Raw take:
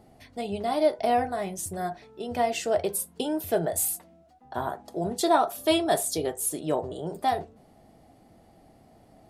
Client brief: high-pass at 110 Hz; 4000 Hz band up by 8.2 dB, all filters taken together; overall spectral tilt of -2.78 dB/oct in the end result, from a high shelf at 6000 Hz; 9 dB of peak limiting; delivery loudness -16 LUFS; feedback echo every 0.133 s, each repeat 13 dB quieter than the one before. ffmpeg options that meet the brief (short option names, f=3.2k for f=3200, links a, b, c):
-af "highpass=110,equalizer=f=4k:t=o:g=7.5,highshelf=f=6k:g=8.5,alimiter=limit=-17dB:level=0:latency=1,aecho=1:1:133|266|399:0.224|0.0493|0.0108,volume=12dB"